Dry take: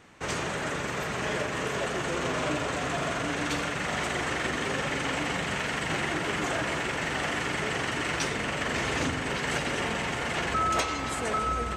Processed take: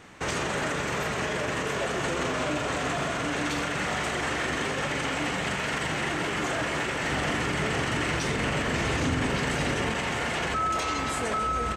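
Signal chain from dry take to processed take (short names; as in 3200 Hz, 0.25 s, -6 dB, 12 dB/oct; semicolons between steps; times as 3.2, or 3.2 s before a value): doubler 27 ms -11.5 dB; limiter -25 dBFS, peak gain reduction 10 dB; 7.11–9.91 low shelf 280 Hz +6.5 dB; gain +5 dB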